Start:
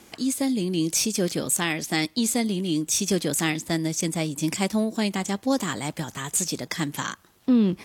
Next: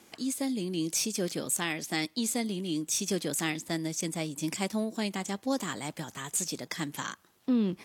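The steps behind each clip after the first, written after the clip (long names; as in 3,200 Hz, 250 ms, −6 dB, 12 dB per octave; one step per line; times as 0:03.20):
high-pass filter 140 Hz 6 dB per octave
level −6 dB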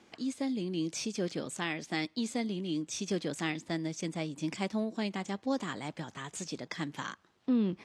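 high-frequency loss of the air 110 metres
level −1.5 dB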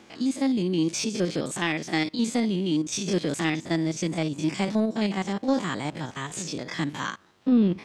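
spectrum averaged block by block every 50 ms
in parallel at −4 dB: soft clipping −28 dBFS, distortion −14 dB
on the sum: level +6 dB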